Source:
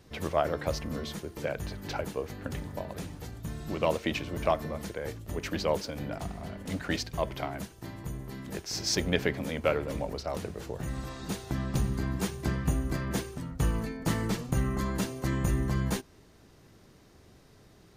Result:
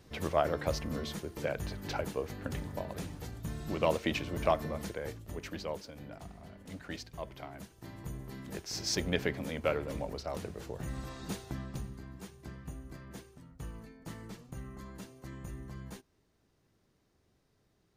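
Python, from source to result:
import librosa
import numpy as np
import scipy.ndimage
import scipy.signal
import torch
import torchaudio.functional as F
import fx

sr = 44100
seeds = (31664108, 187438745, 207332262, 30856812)

y = fx.gain(x, sr, db=fx.line((4.88, -1.5), (5.78, -11.0), (7.45, -11.0), (8.04, -4.0), (11.36, -4.0), (12.03, -16.0)))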